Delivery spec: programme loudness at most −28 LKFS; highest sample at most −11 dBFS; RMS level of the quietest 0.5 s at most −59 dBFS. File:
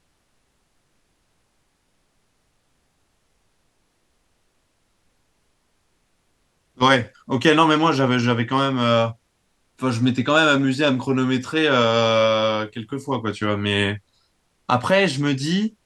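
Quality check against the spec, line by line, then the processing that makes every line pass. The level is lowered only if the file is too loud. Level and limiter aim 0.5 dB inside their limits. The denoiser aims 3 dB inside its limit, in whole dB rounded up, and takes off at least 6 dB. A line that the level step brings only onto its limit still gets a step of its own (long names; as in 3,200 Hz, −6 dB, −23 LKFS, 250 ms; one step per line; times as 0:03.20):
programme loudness −19.5 LKFS: out of spec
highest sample −3.0 dBFS: out of spec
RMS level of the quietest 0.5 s −67 dBFS: in spec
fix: level −9 dB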